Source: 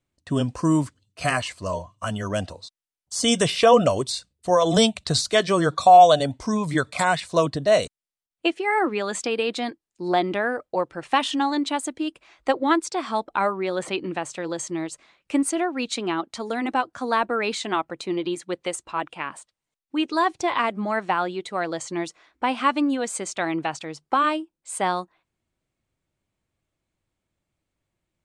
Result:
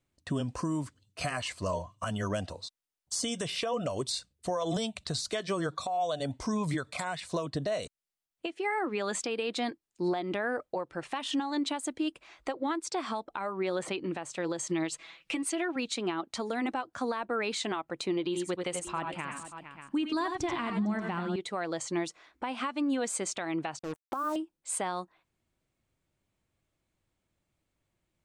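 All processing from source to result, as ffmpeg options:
-filter_complex "[0:a]asettb=1/sr,asplit=3[a][b][c];[a]atrim=end=14.694[d];[b]atrim=start=14.69:end=15.76,asetpts=PTS-STARTPTS,afade=t=in:d=0.004:c=qsin,afade=t=out:st=1.066:d=0.004:c=qsin,equalizer=f=3k:w=0.82:g=8.5,aecho=1:1:6.1:0.88,atrim=end_sample=47187[e];[c]atrim=start=15.756[f];[d][e]acrossfade=d=0.004:c1=hsin:c2=qsin[g];[g][f]acrossfade=d=0.004:c1=qsin:c2=hsin,asettb=1/sr,asplit=3[h][i][j];[h]atrim=end=18.264[k];[i]atrim=start=18.26:end=21.36,asetpts=PTS-STARTPTS,afade=t=in:d=0.004:c=qsin,afade=t=out:st=3.096:d=0.004:c=qsin,asubboost=boost=9:cutoff=230,aecho=1:1:81|92|454|582:0.316|0.398|0.126|0.126,atrim=end_sample=136710[l];[j]atrim=start=21.356[m];[k][l]acrossfade=d=0.004:c1=hsin:c2=qsin[n];[n][m]acrossfade=d=0.004:c1=qsin:c2=hsin,asettb=1/sr,asplit=3[o][p][q];[o]atrim=end=23.794[r];[p]atrim=start=23.79:end=24.36,asetpts=PTS-STARTPTS,afade=t=in:d=0.004:c=qsin,afade=t=out:st=0.566:d=0.004:c=qsin,asuperstop=centerf=3600:order=12:qfactor=0.54,acrusher=bits=5:mix=0:aa=0.5[s];[q]atrim=start=24.356[t];[r][s]acrossfade=d=0.004:c1=hsin:c2=qsin[u];[u][t]acrossfade=d=0.004:c1=qsin:c2=hsin,acompressor=threshold=-23dB:ratio=6,alimiter=limit=-22.5dB:level=0:latency=1:release=352"

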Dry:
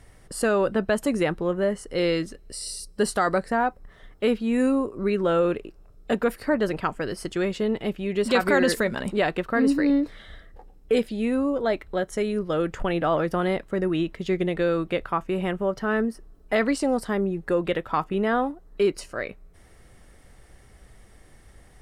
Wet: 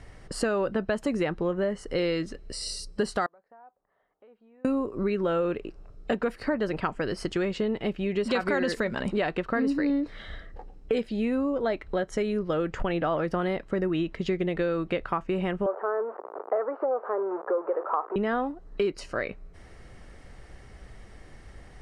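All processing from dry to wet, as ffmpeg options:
-filter_complex "[0:a]asettb=1/sr,asplit=3[a][b][c];[a]atrim=end=3.264[d];[b]atrim=start=3.26:end=4.65,asetpts=PTS-STARTPTS,afade=t=in:d=0.004:c=qsin,afade=t=out:st=1.386:d=0.004:c=qsin,aderivative,acompressor=threshold=-60dB:ratio=2.5:attack=3.2:release=140:knee=1:detection=peak,lowpass=f=770:t=q:w=1.6[e];[c]atrim=start=4.646[f];[d][e]acrossfade=d=0.004:c1=hsin:c2=qsin[g];[g][f]acrossfade=d=0.004:c1=qsin:c2=hsin,asettb=1/sr,asplit=3[h][i][j];[h]atrim=end=15.664[k];[i]atrim=start=15.66:end=18.16,asetpts=PTS-STARTPTS,afade=t=in:d=0.004:c=qsin,afade=t=out:st=2.496:d=0.004:c=qsin,aeval=exprs='val(0)+0.5*0.0501*sgn(val(0))':c=same,asuperpass=centerf=720:order=8:qfactor=0.8[l];[j]atrim=start=18.156[m];[k][l]acrossfade=d=0.004:c1=hsin:c2=qsin[n];[n][m]acrossfade=d=0.004:c1=qsin:c2=hsin,lowpass=5.7k,bandreject=f=3.5k:w=18,acompressor=threshold=-30dB:ratio=3,volume=4dB"

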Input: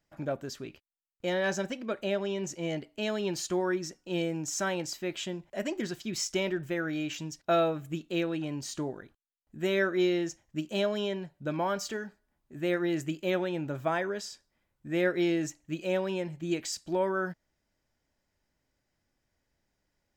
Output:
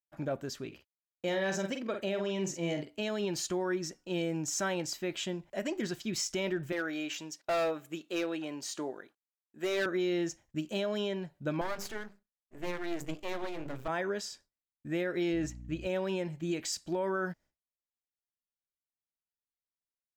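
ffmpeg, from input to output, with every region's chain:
-filter_complex "[0:a]asettb=1/sr,asplit=3[a][b][c];[a]atrim=end=0.674[d];[b]atrim=start=0.67:end=3.01,asetpts=PTS-STARTPTS,afade=t=in:d=0.004:c=qsin,afade=t=out:st=2.336:d=0.004:c=qsin,highpass=51,bandreject=f=1.5k:w=25,asplit=2[e][f];[f]adelay=47,volume=-7dB[g];[e][g]amix=inputs=2:normalize=0,atrim=end_sample=103194[h];[c]atrim=start=3.006[i];[d][h]acrossfade=d=0.004:c1=hsin:c2=qsin[j];[j][i]acrossfade=d=0.004:c1=qsin:c2=hsin,asettb=1/sr,asplit=3[k][l][m];[k]atrim=end=6.724[n];[l]atrim=start=6.72:end=9.86,asetpts=PTS-STARTPTS,afade=t=in:d=0.004:c=qsin,afade=t=out:st=3.136:d=0.004:c=qsin,highpass=340,asoftclip=type=hard:threshold=-26.5dB[o];[m]atrim=start=9.856[p];[n][o]acrossfade=d=0.004:c1=hsin:c2=qsin[q];[q][p]acrossfade=d=0.004:c1=qsin:c2=hsin,asettb=1/sr,asplit=3[r][s][t];[r]atrim=end=11.614[u];[s]atrim=start=11.61:end=13.88,asetpts=PTS-STARTPTS,afade=t=in:d=0.004:c=qsin,afade=t=out:st=2.266:d=0.004:c=qsin,bandreject=f=50:t=h:w=6,bandreject=f=100:t=h:w=6,bandreject=f=150:t=h:w=6,bandreject=f=200:t=h:w=6,bandreject=f=250:t=h:w=6,bandreject=f=300:t=h:w=6,bandreject=f=350:t=h:w=6,bandreject=f=400:t=h:w=6,bandreject=f=450:t=h:w=6,bandreject=f=500:t=h:w=6,aeval=exprs='max(val(0),0)':c=same[v];[t]atrim=start=13.876[w];[u][v]acrossfade=d=0.004:c1=hsin:c2=qsin[x];[x][w]acrossfade=d=0.004:c1=qsin:c2=hsin,asettb=1/sr,asplit=3[y][z][aa];[y]atrim=end=15.334[ab];[z]atrim=start=15.33:end=15.87,asetpts=PTS-STARTPTS,afade=t=in:d=0.004:c=qsin,afade=t=out:st=0.536:d=0.004:c=qsin,highshelf=f=6.2k:g=-9.5,aeval=exprs='val(0)+0.00631*(sin(2*PI*60*n/s)+sin(2*PI*2*60*n/s)/2+sin(2*PI*3*60*n/s)/3+sin(2*PI*4*60*n/s)/4+sin(2*PI*5*60*n/s)/5)':c=same[ac];[aa]atrim=start=15.866[ad];[ab][ac]acrossfade=d=0.004:c1=hsin:c2=qsin[ae];[ae][ad]acrossfade=d=0.004:c1=qsin:c2=hsin,agate=range=-33dB:threshold=-53dB:ratio=3:detection=peak,alimiter=limit=-24dB:level=0:latency=1:release=65"

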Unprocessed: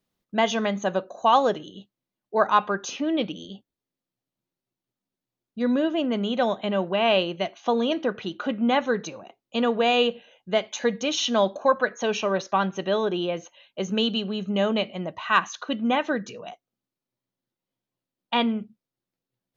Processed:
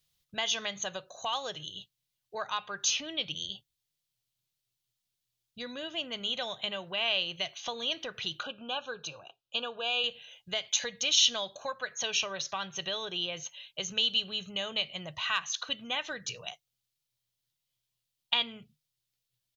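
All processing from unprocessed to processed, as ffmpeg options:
-filter_complex "[0:a]asettb=1/sr,asplit=3[a][b][c];[a]atrim=end=8.434[d];[b]atrim=start=8.43:end=10.04,asetpts=PTS-STARTPTS,afade=t=in:d=0.004:c=qsin,afade=t=out:st=1.606:d=0.004:c=qsin,asuperstop=centerf=2000:order=12:qfactor=2.7,bass=f=250:g=-7,treble=f=4k:g=-12[e];[c]atrim=start=10.036[f];[d][e]acrossfade=d=0.004:c1=hsin:c2=qsin[g];[g][f]acrossfade=d=0.004:c1=qsin:c2=hsin,equalizer=f=150:w=7.4:g=8.5,acompressor=threshold=-29dB:ratio=2.5,firequalizer=gain_entry='entry(110,0);entry(210,-20);entry(500,-12);entry(3200,6)':delay=0.05:min_phase=1,volume=2.5dB"

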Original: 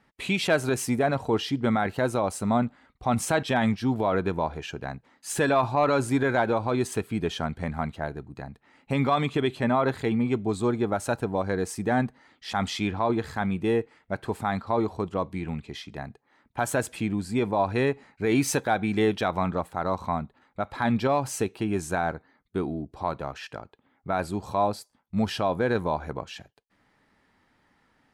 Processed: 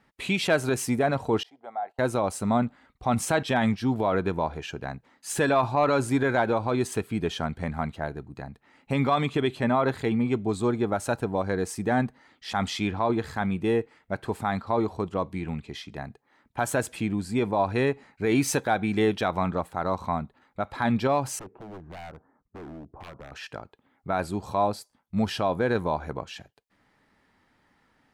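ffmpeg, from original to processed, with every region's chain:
-filter_complex "[0:a]asettb=1/sr,asplit=3[a][b][c];[a]atrim=end=1.434[d];[b]atrim=start=1.43:end=1.99,asetpts=PTS-STARTPTS,afade=t=in:d=0.004:c=qsin,afade=t=out:st=0.556:d=0.004:c=qsin,agate=range=-16dB:threshold=-37dB:ratio=16:release=100:detection=peak,bandpass=f=730:t=q:w=6.1,aemphasis=mode=production:type=riaa[e];[c]atrim=start=1.986[f];[d][e]acrossfade=d=0.004:c1=hsin:c2=qsin[g];[g][f]acrossfade=d=0.004:c1=qsin:c2=hsin,asettb=1/sr,asplit=3[h][i][j];[h]atrim=end=21.394[k];[i]atrim=start=21.39:end=23.32,asetpts=PTS-STARTPTS,afade=t=in:d=0.004:c=qsin,afade=t=out:st=1.926:d=0.004:c=qsin,lowpass=f=1.3k:w=0.5412,lowpass=f=1.3k:w=1.3066,acompressor=threshold=-41dB:ratio=2:attack=3.2:release=140:knee=1:detection=peak,aeval=exprs='0.0158*(abs(mod(val(0)/0.0158+3,4)-2)-1)':c=same[l];[j]atrim=start=23.316[m];[k][l]acrossfade=d=0.004:c1=hsin:c2=qsin[n];[n][m]acrossfade=d=0.004:c1=qsin:c2=hsin"

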